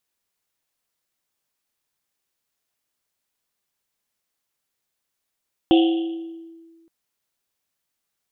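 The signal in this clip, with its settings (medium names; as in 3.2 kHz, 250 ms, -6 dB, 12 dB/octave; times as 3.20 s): Risset drum length 1.17 s, pitch 330 Hz, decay 1.67 s, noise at 3.1 kHz, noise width 660 Hz, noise 15%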